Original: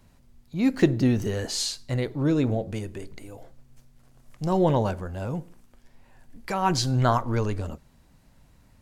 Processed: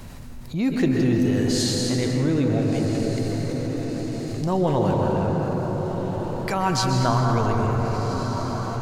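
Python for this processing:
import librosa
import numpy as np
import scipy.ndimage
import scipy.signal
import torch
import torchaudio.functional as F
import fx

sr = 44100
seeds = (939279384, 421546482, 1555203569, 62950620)

y = fx.lowpass(x, sr, hz=4900.0, slope=12, at=(4.95, 5.39))
y = fx.echo_diffused(y, sr, ms=1369, feedback_pct=41, wet_db=-14.0)
y = fx.rev_plate(y, sr, seeds[0], rt60_s=3.8, hf_ratio=0.45, predelay_ms=115, drr_db=0.0)
y = fx.env_flatten(y, sr, amount_pct=50)
y = y * librosa.db_to_amplitude(-3.5)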